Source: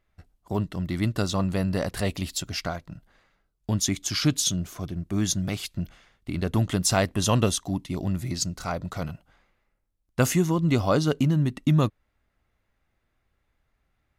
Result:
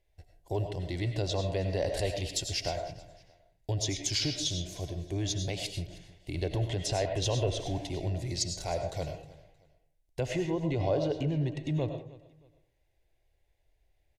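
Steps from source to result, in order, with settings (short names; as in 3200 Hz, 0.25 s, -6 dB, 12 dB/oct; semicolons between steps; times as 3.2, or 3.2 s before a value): 7.21–7.87 zero-crossing step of -36.5 dBFS; treble ducked by the level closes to 2400 Hz, closed at -18 dBFS; limiter -16.5 dBFS, peak gain reduction 8.5 dB; fixed phaser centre 520 Hz, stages 4; feedback echo 0.313 s, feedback 30%, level -20 dB; reverb RT60 0.45 s, pre-delay 60 ms, DRR 5.5 dB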